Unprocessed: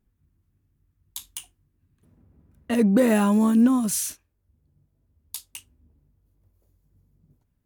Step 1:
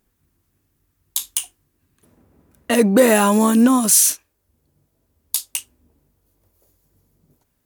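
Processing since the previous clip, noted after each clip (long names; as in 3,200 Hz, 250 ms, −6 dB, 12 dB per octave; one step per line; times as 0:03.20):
bass and treble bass −13 dB, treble +5 dB
in parallel at −1 dB: brickwall limiter −17.5 dBFS, peak gain reduction 7.5 dB
on the sum: level +5.5 dB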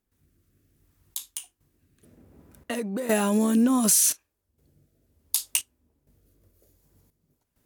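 downward compressor 6 to 1, threshold −18 dBFS, peak gain reduction 10 dB
rotating-speaker cabinet horn 0.65 Hz
gate pattern ".xxxxxxxxx..." 131 BPM −12 dB
level +3 dB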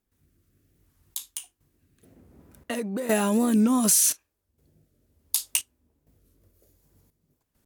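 wow of a warped record 45 rpm, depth 160 cents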